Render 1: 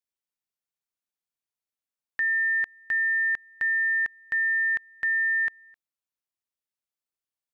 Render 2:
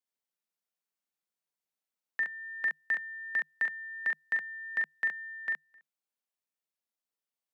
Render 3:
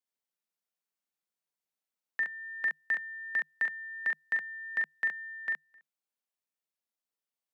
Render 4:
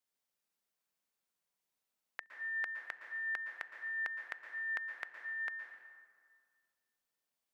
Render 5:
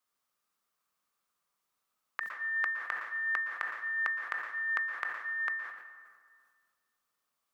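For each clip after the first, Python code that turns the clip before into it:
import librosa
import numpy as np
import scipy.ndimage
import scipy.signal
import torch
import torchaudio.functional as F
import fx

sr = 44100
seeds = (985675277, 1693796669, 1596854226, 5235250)

y1 = fx.rider(x, sr, range_db=10, speed_s=0.5)
y1 = scipy.signal.sosfilt(scipy.signal.cheby1(6, 3, 150.0, 'highpass', fs=sr, output='sos'), y1)
y1 = fx.room_early_taps(y1, sr, ms=(42, 68), db=(-4.5, -3.5))
y2 = y1
y3 = fx.gate_flip(y2, sr, shuts_db=-37.0, range_db=-34)
y3 = fx.rev_plate(y3, sr, seeds[0], rt60_s=1.9, hf_ratio=0.55, predelay_ms=105, drr_db=5.0)
y3 = y3 * librosa.db_to_amplitude(2.5)
y4 = fx.peak_eq(y3, sr, hz=1200.0, db=13.5, octaves=0.4)
y4 = fx.sustainer(y4, sr, db_per_s=57.0)
y4 = y4 * librosa.db_to_amplitude(3.5)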